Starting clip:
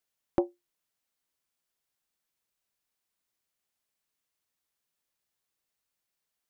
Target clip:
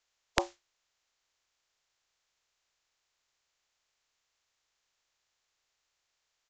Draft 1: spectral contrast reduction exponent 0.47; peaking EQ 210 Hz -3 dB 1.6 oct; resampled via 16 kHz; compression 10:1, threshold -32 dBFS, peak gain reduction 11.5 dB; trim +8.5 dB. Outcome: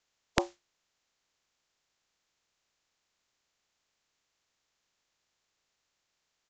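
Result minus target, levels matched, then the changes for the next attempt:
250 Hz band +4.0 dB
change: peaking EQ 210 Hz -13 dB 1.6 oct

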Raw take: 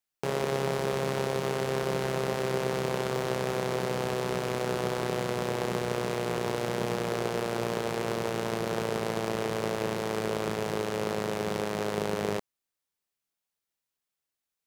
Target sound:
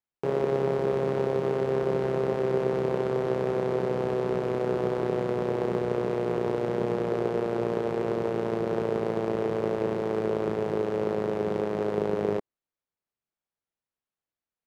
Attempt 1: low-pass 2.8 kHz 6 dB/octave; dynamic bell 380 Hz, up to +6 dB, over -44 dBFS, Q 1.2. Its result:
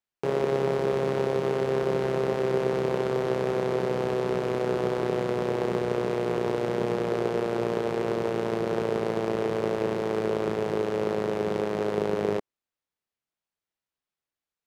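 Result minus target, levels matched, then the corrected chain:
2 kHz band +3.0 dB
low-pass 1.2 kHz 6 dB/octave; dynamic bell 380 Hz, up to +6 dB, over -44 dBFS, Q 1.2

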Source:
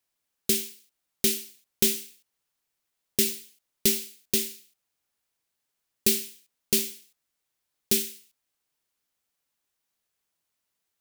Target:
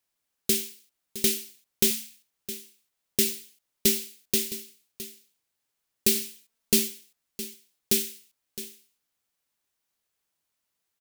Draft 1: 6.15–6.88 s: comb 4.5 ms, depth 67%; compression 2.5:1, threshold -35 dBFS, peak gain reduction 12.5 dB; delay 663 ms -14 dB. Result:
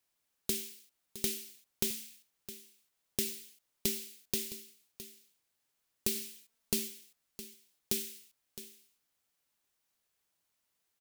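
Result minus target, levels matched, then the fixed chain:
compression: peak gain reduction +12.5 dB
6.15–6.88 s: comb 4.5 ms, depth 67%; delay 663 ms -14 dB

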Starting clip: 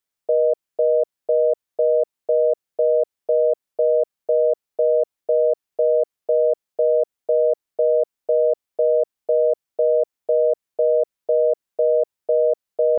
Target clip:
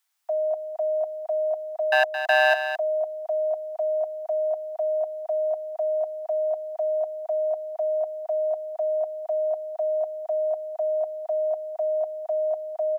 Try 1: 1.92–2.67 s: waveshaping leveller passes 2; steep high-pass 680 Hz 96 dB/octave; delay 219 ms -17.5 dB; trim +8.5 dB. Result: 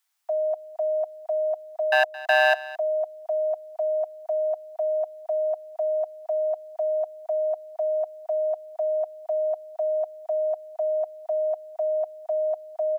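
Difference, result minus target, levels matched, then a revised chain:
echo-to-direct -8.5 dB
1.92–2.67 s: waveshaping leveller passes 2; steep high-pass 680 Hz 96 dB/octave; delay 219 ms -9 dB; trim +8.5 dB

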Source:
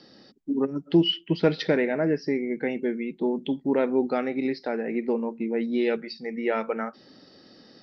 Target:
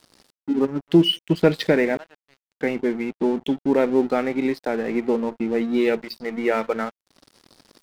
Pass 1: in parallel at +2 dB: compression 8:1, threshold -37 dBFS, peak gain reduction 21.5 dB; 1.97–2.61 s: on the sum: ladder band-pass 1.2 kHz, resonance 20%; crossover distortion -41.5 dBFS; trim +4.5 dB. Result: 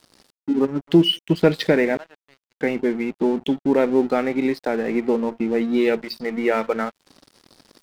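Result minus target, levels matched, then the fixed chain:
compression: peak gain reduction -9 dB
in parallel at +2 dB: compression 8:1, threshold -47 dBFS, peak gain reduction 30.5 dB; 1.97–2.61 s: on the sum: ladder band-pass 1.2 kHz, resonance 20%; crossover distortion -41.5 dBFS; trim +4.5 dB

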